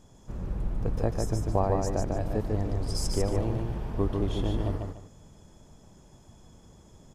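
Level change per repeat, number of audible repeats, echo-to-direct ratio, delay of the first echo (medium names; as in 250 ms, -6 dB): -11.0 dB, 2, -3.0 dB, 147 ms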